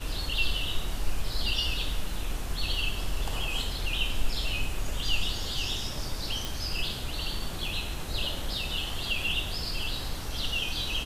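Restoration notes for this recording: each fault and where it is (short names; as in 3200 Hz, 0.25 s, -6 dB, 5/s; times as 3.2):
6.45 pop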